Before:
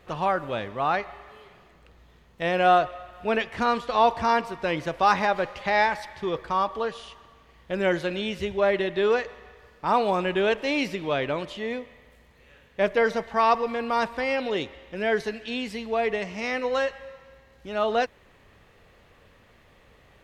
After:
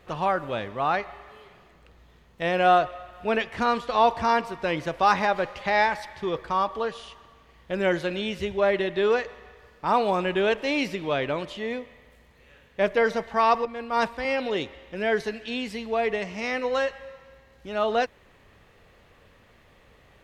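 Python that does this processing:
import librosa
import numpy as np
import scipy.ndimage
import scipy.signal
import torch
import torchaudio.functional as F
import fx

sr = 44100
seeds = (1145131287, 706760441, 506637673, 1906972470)

y = fx.band_widen(x, sr, depth_pct=100, at=(13.65, 14.25))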